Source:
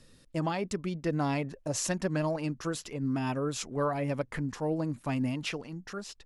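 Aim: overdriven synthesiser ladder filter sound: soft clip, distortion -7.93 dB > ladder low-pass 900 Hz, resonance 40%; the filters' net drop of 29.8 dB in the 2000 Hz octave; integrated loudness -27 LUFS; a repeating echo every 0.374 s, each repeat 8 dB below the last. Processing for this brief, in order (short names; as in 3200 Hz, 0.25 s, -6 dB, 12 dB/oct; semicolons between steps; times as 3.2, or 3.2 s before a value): bell 2000 Hz -4 dB; feedback echo 0.374 s, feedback 40%, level -8 dB; soft clip -33.5 dBFS; ladder low-pass 900 Hz, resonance 40%; gain +18 dB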